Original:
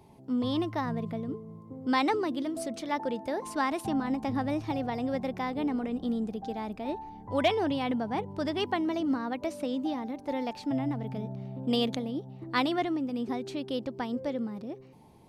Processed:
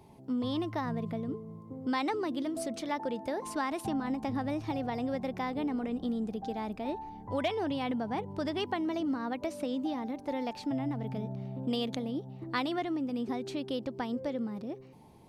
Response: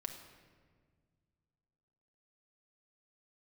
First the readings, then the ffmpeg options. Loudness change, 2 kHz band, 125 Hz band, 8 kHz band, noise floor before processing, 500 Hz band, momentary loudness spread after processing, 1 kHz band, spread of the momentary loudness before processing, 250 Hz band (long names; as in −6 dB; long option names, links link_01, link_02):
−3.0 dB, −4.0 dB, −1.5 dB, can't be measured, −51 dBFS, −3.0 dB, 5 LU, −3.5 dB, 8 LU, −2.5 dB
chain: -af "acompressor=threshold=-30dB:ratio=2.5"